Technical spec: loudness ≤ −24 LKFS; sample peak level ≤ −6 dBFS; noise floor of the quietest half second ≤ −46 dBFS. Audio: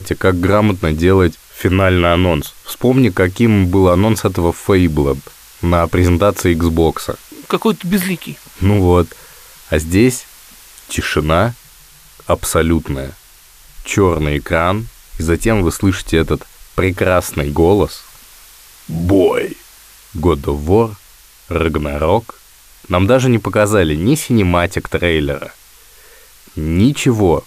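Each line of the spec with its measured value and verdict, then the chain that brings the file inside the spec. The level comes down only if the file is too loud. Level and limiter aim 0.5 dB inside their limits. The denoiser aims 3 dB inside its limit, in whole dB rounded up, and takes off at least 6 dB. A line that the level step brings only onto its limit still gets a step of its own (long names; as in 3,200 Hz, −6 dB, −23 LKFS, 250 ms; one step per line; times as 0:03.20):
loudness −15.0 LKFS: out of spec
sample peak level −1.5 dBFS: out of spec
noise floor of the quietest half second −44 dBFS: out of spec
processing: level −9.5 dB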